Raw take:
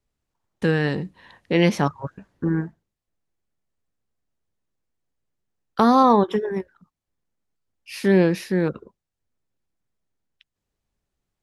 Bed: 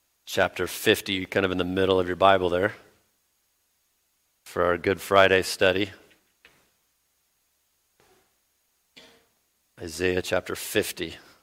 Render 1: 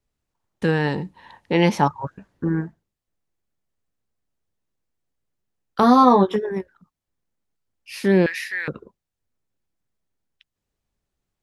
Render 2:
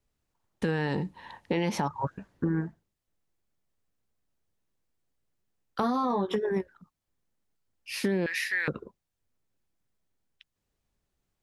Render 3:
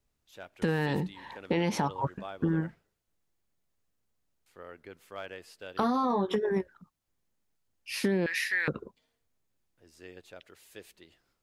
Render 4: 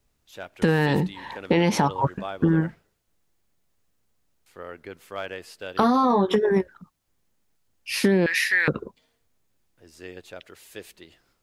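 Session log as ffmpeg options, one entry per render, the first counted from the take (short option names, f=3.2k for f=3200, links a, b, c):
-filter_complex "[0:a]asettb=1/sr,asplit=3[a][b][c];[a]atrim=end=0.684[d];[b]atrim=start=0.68:end=2.05,asetpts=PTS-STARTPTS,afade=t=in:d=0.004:c=qsin,afade=t=out:st=1.366:d=0.004:c=qsin,equalizer=f=890:t=o:w=0.26:g=12[e];[c]atrim=start=2.046[f];[d][e]acrossfade=d=0.004:c1=hsin:c2=qsin[g];[g][f]acrossfade=d=0.004:c1=qsin:c2=hsin,asettb=1/sr,asplit=3[h][i][j];[h]atrim=end=5.814[k];[i]atrim=start=5.81:end=6.36,asetpts=PTS-STARTPTS,afade=t=in:d=0.004:c=qsin,afade=t=out:st=0.546:d=0.004:c=qsin,asplit=2[l][m];[m]adelay=16,volume=-3.5dB[n];[l][n]amix=inputs=2:normalize=0,atrim=end_sample=24255[o];[j]atrim=start=6.356[p];[k][o]acrossfade=d=0.004:c1=hsin:c2=qsin[q];[q][p]acrossfade=d=0.004:c1=qsin:c2=hsin,asettb=1/sr,asplit=3[r][s][t];[r]atrim=end=8.264[u];[s]atrim=start=8.26:end=8.68,asetpts=PTS-STARTPTS,afade=t=in:d=0.004:c=qsin,afade=t=out:st=0.416:d=0.004:c=qsin,highpass=f=1.9k:t=q:w=4.2[v];[t]atrim=start=8.676[w];[u][v]acrossfade=d=0.004:c1=hsin:c2=qsin[x];[x][w]acrossfade=d=0.004:c1=qsin:c2=hsin"
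-af "alimiter=limit=-14.5dB:level=0:latency=1:release=75,acompressor=threshold=-24dB:ratio=6"
-filter_complex "[1:a]volume=-24dB[a];[0:a][a]amix=inputs=2:normalize=0"
-af "volume=8dB"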